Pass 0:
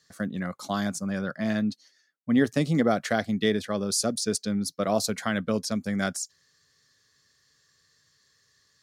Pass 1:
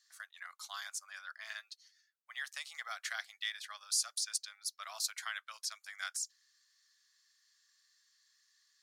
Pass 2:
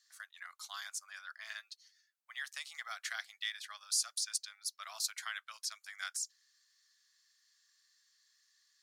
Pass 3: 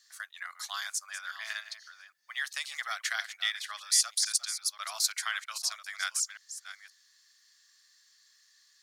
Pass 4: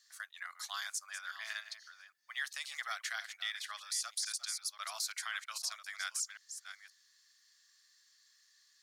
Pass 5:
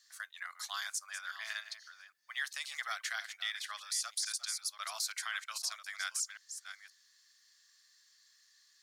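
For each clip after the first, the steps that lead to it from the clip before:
Bessel high-pass 1.7 kHz, order 8; trim -5 dB
bass shelf 480 Hz -9.5 dB
chunks repeated in reverse 531 ms, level -12 dB; trim +8 dB
peak limiter -22 dBFS, peak gain reduction 10.5 dB; trim -4 dB
feedback comb 520 Hz, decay 0.15 s, mix 30%; trim +4 dB

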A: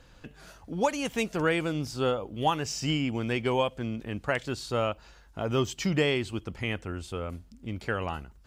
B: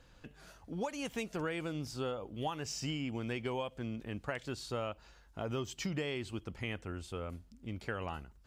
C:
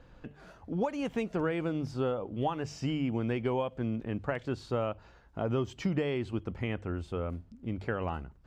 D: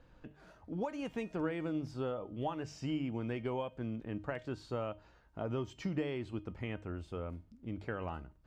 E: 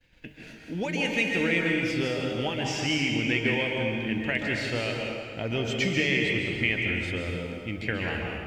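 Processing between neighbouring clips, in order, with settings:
compression, threshold -27 dBFS, peak gain reduction 8 dB; trim -6 dB
low-pass 1.1 kHz 6 dB/octave; hum notches 50/100/150 Hz; trim +7.5 dB
feedback comb 310 Hz, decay 0.33 s, harmonics all, mix 60%; trim +1 dB
resonant high shelf 1.6 kHz +10 dB, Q 3; expander -52 dBFS; plate-style reverb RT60 2.1 s, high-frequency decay 0.75×, pre-delay 120 ms, DRR -0.5 dB; trim +6.5 dB

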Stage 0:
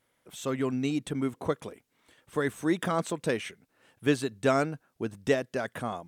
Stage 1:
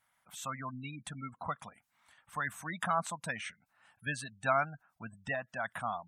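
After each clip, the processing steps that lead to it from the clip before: spectral gate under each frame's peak -25 dB strong; FFT filter 210 Hz 0 dB, 400 Hz -22 dB, 720 Hz +8 dB, 1.3 kHz +10 dB, 3.2 kHz +4 dB, 11 kHz +8 dB; trim -8.5 dB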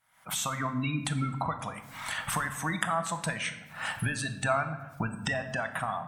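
recorder AGC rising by 68 dB/s; simulated room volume 510 m³, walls mixed, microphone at 0.6 m

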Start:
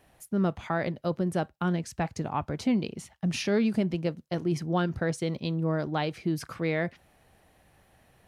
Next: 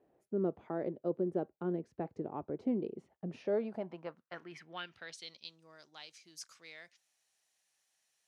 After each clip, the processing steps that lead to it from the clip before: band-pass sweep 390 Hz -> 6.4 kHz, 3.21–5.60 s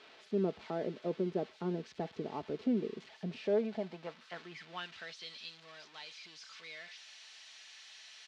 zero-crossing glitches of -34.5 dBFS; low-pass 4 kHz 24 dB/octave; comb 4.6 ms, depth 35%

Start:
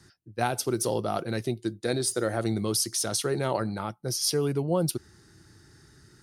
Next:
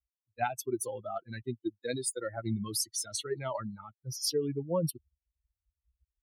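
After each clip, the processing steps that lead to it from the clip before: expander on every frequency bin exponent 3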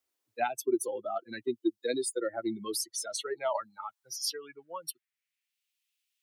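high-pass sweep 330 Hz -> 2.7 kHz, 2.38–5.55 s; three bands compressed up and down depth 40%

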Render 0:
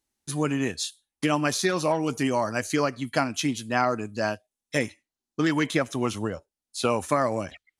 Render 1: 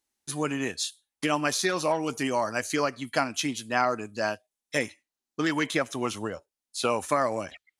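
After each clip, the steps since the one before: bass shelf 260 Hz -9 dB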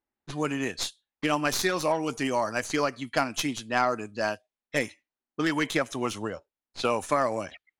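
tracing distortion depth 0.041 ms; level-controlled noise filter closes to 1.6 kHz, open at -24.5 dBFS

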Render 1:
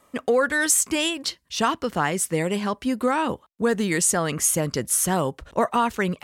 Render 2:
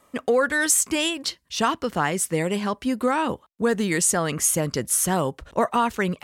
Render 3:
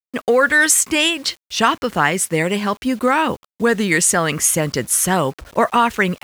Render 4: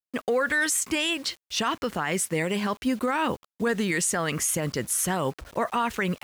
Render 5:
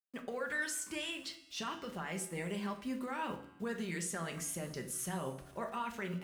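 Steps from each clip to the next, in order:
no audible change
dynamic bell 2.1 kHz, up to +6 dB, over -36 dBFS, Q 0.89; bit crusher 8-bit; trim +4.5 dB
peak limiter -11.5 dBFS, peak gain reduction 10.5 dB; trim -5 dB
feedback comb 94 Hz, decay 1.4 s, harmonics all, mix 60%; reverberation RT60 0.50 s, pre-delay 5 ms, DRR 5 dB; flange 0.44 Hz, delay 3.3 ms, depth 7.2 ms, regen -66%; trim -3.5 dB

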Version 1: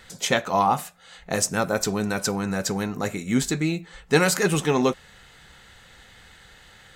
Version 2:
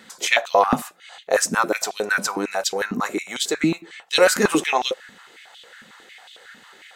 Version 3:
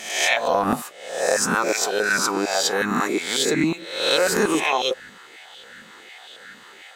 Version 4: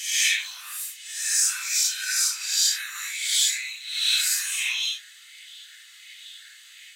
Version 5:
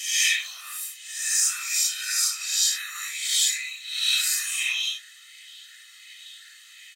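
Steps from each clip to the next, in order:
step-sequenced high-pass 11 Hz 230–3300 Hz; trim +1 dB
reverse spectral sustain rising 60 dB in 0.69 s; peaking EQ 390 Hz +2.5 dB 0.24 oct; compression, threshold -16 dBFS, peak gain reduction 7.5 dB
phase randomisation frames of 200 ms; inverse Chebyshev high-pass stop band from 460 Hz, stop band 70 dB; treble shelf 4.7 kHz +9 dB; trim -2 dB
comb 1.6 ms, depth 64%; trim -2 dB

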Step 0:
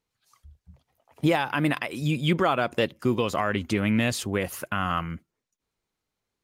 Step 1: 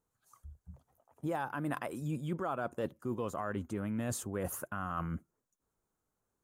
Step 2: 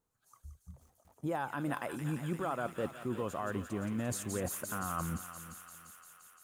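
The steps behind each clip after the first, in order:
high-order bell 3.2 kHz -13 dB; reverse; compression 5:1, threshold -34 dBFS, peak gain reduction 15 dB; reverse
feedback echo behind a high-pass 173 ms, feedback 82%, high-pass 2.3 kHz, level -4 dB; bit-crushed delay 369 ms, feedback 35%, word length 9-bit, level -14 dB

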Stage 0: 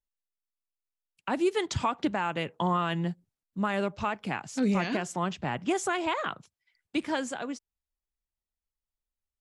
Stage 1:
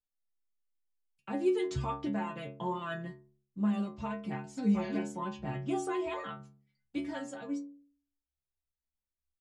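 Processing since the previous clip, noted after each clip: bass shelf 490 Hz +11.5 dB; inharmonic resonator 67 Hz, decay 0.66 s, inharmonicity 0.008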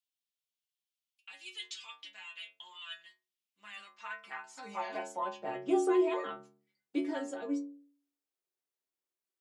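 high-pass sweep 3 kHz -> 360 Hz, 3.32–5.84 s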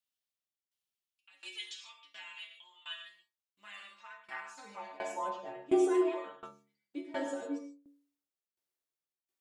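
gated-style reverb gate 170 ms flat, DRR 1.5 dB; tremolo saw down 1.4 Hz, depth 90%

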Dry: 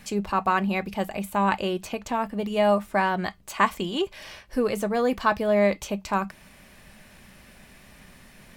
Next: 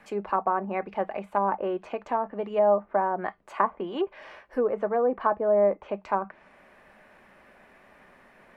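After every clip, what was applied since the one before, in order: three-band isolator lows -18 dB, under 310 Hz, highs -21 dB, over 2 kHz; low-pass that closes with the level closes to 880 Hz, closed at -22 dBFS; trim +2 dB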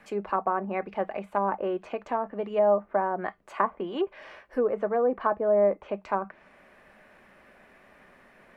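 peaking EQ 890 Hz -3 dB 0.49 oct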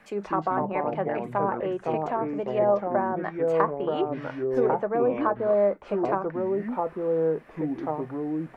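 ever faster or slower copies 160 ms, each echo -4 st, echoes 2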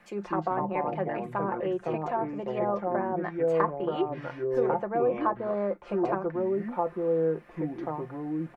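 comb 5.7 ms, depth 56%; trim -3.5 dB

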